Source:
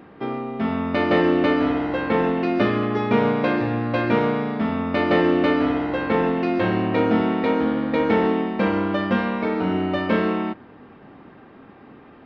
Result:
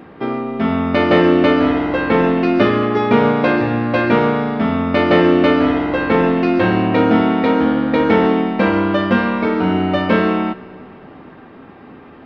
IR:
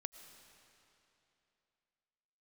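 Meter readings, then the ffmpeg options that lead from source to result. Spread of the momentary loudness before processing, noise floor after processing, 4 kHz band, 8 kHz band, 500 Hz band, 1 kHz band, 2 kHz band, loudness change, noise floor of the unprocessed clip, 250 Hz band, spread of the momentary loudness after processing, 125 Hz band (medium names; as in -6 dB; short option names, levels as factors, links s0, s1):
5 LU, -40 dBFS, +6.5 dB, no reading, +6.0 dB, +6.0 dB, +6.0 dB, +6.0 dB, -47 dBFS, +6.0 dB, 5 LU, +6.0 dB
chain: -filter_complex "[0:a]asplit=2[s0][s1];[1:a]atrim=start_sample=2205,adelay=12[s2];[s1][s2]afir=irnorm=-1:irlink=0,volume=0.398[s3];[s0][s3]amix=inputs=2:normalize=0,volume=2"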